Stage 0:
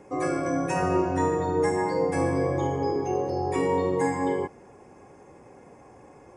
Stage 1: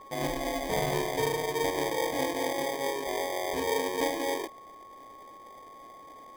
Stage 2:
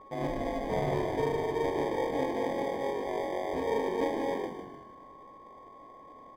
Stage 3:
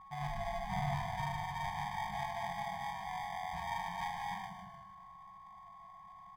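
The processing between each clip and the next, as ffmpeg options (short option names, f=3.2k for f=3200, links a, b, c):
-af "highpass=590,acrusher=samples=32:mix=1:aa=0.000001,aeval=exprs='val(0)+0.00447*sin(2*PI*1100*n/s)':c=same"
-filter_complex "[0:a]lowpass=f=1k:p=1,asplit=2[a][b];[b]asplit=5[c][d][e][f][g];[c]adelay=152,afreqshift=-47,volume=-8dB[h];[d]adelay=304,afreqshift=-94,volume=-14.6dB[i];[e]adelay=456,afreqshift=-141,volume=-21.1dB[j];[f]adelay=608,afreqshift=-188,volume=-27.7dB[k];[g]adelay=760,afreqshift=-235,volume=-34.2dB[l];[h][i][j][k][l]amix=inputs=5:normalize=0[m];[a][m]amix=inputs=2:normalize=0"
-af "afftfilt=real='re*(1-between(b*sr/4096,210,670))':imag='im*(1-between(b*sr/4096,210,670))':win_size=4096:overlap=0.75,volume=-2dB"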